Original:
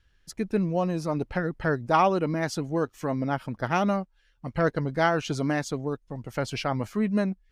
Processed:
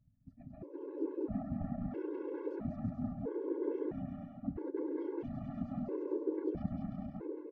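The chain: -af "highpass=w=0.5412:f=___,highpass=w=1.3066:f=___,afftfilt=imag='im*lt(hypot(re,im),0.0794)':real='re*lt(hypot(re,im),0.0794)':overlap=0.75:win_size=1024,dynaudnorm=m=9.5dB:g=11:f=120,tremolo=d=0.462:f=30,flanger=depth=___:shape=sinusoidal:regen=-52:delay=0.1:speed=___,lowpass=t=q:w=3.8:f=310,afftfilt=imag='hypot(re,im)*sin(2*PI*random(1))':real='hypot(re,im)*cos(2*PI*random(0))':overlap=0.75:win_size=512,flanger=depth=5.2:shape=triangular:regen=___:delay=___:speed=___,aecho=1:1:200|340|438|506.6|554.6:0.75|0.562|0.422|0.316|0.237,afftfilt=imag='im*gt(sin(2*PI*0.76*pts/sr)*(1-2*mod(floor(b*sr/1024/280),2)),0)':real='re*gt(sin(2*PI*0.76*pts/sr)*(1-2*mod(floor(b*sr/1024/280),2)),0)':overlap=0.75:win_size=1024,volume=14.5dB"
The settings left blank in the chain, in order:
56, 56, 7, 0.73, 86, 6.4, 2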